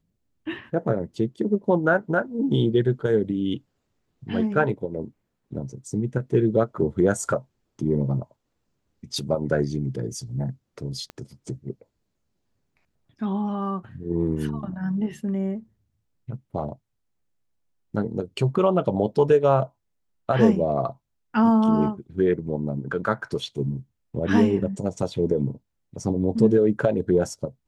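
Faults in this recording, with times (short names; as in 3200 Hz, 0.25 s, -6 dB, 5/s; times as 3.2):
11.1 pop -22 dBFS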